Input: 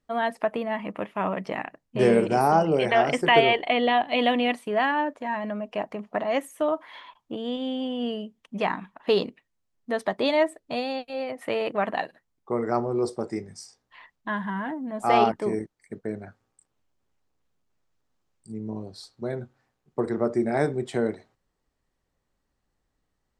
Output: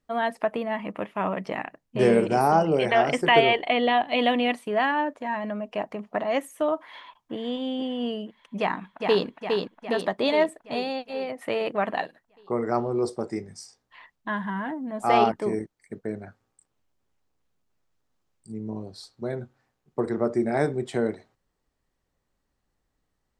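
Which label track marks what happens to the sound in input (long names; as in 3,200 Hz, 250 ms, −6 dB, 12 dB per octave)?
6.810000	7.340000	delay throw 480 ms, feedback 55%, level −9 dB
8.590000	9.260000	delay throw 410 ms, feedback 60%, level −4 dB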